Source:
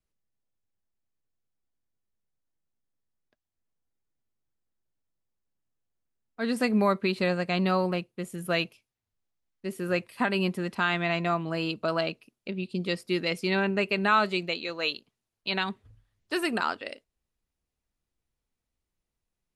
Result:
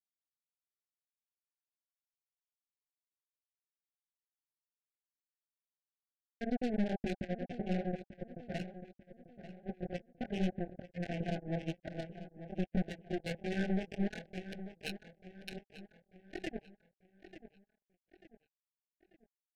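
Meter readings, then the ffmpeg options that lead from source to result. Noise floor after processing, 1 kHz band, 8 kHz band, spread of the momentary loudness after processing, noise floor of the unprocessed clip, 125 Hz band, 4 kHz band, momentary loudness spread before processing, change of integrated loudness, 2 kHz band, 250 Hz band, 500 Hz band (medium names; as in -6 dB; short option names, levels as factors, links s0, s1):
under -85 dBFS, -18.0 dB, under -10 dB, 19 LU, under -85 dBFS, -6.5 dB, -18.0 dB, 13 LU, -11.5 dB, -18.0 dB, -8.0 dB, -12.0 dB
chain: -filter_complex "[0:a]aeval=exprs='sgn(val(0))*max(abs(val(0))-0.00891,0)':c=same,equalizer=f=140:t=o:w=0.59:g=4,alimiter=limit=0.0944:level=0:latency=1:release=70,acrossover=split=190|3000[s0][s1][s2];[s1]acompressor=threshold=0.00126:ratio=1.5[s3];[s0][s3][s2]amix=inputs=3:normalize=0,afftfilt=real='re*gte(hypot(re,im),0.0447)':imag='im*gte(hypot(re,im),0.0447)':win_size=1024:overlap=0.75,flanger=delay=18.5:depth=7.4:speed=1.7,acrusher=bits=5:mix=0:aa=0.5,adynamicsmooth=sensitivity=4.5:basefreq=1500,aeval=exprs='(tanh(141*val(0)+0.55)-tanh(0.55))/141':c=same,asuperstop=centerf=1100:order=20:qfactor=1.6,asplit=2[s4][s5];[s5]adelay=891,lowpass=f=3600:p=1,volume=0.237,asplit=2[s6][s7];[s7]adelay=891,lowpass=f=3600:p=1,volume=0.45,asplit=2[s8][s9];[s9]adelay=891,lowpass=f=3600:p=1,volume=0.45,asplit=2[s10][s11];[s11]adelay=891,lowpass=f=3600:p=1,volume=0.45[s12];[s4][s6][s8][s10][s12]amix=inputs=5:normalize=0,volume=5.62"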